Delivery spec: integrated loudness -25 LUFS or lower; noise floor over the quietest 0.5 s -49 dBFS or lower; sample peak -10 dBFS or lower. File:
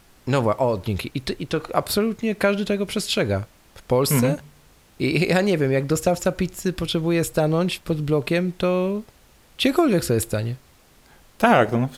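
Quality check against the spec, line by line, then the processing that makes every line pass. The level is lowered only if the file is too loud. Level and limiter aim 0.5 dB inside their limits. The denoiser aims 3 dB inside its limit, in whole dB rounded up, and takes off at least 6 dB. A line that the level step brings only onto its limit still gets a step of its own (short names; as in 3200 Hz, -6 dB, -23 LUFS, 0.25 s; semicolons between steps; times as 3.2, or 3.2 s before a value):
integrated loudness -22.0 LUFS: fail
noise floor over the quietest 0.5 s -54 dBFS: OK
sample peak -3.5 dBFS: fail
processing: gain -3.5 dB; limiter -10.5 dBFS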